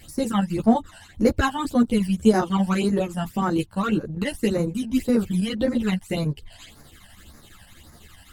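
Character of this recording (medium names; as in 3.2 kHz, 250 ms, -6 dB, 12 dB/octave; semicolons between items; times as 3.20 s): phasing stages 12, 1.8 Hz, lowest notch 370–3100 Hz; chopped level 12 Hz, depth 60%, duty 80%; a shimmering, thickened sound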